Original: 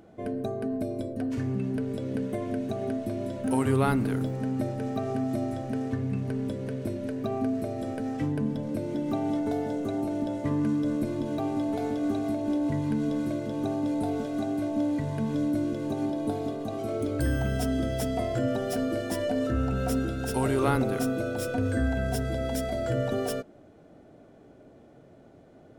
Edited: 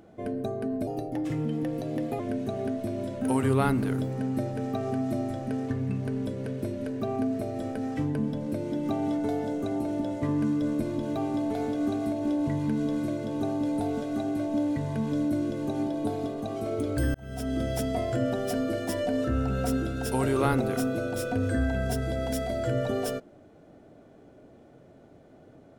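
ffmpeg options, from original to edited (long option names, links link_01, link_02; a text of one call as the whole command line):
ffmpeg -i in.wav -filter_complex "[0:a]asplit=4[link_01][link_02][link_03][link_04];[link_01]atrim=end=0.874[link_05];[link_02]atrim=start=0.87:end=2.42,asetpts=PTS-STARTPTS,asetrate=51597,aresample=44100,atrim=end_sample=58423,asetpts=PTS-STARTPTS[link_06];[link_03]atrim=start=2.416:end=17.37,asetpts=PTS-STARTPTS,afade=type=out:start_time=14.95:duration=0.004:curve=hsin[link_07];[link_04]atrim=start=17.37,asetpts=PTS-STARTPTS,afade=type=in:duration=0.49[link_08];[link_05][link_06]acrossfade=duration=0.004:curve1=hsin:curve2=hsin[link_09];[link_07][link_08]concat=n=2:v=0:a=1[link_10];[link_09][link_10]acrossfade=duration=0.004:curve1=hsin:curve2=hsin" out.wav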